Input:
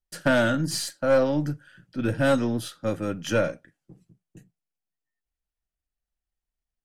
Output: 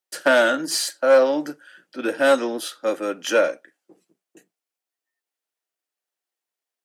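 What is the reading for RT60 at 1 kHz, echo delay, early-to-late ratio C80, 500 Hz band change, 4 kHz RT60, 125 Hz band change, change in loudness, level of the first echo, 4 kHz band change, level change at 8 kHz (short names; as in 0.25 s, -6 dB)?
none, none, none, +6.0 dB, none, under -20 dB, +4.5 dB, none, +6.0 dB, +6.0 dB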